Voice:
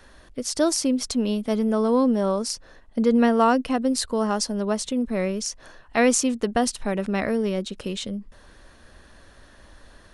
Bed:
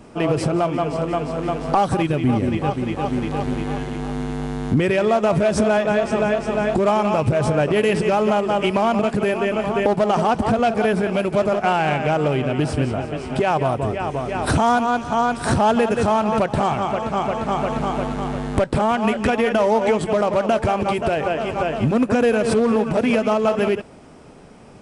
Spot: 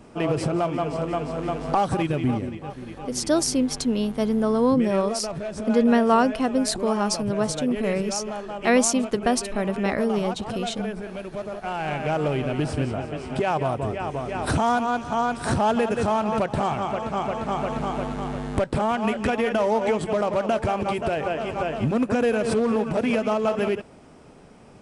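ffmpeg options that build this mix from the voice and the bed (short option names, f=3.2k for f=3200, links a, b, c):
-filter_complex "[0:a]adelay=2700,volume=0dB[a];[1:a]volume=5dB,afade=t=out:st=2.25:d=0.3:silence=0.334965,afade=t=in:st=11.61:d=0.56:silence=0.354813[b];[a][b]amix=inputs=2:normalize=0"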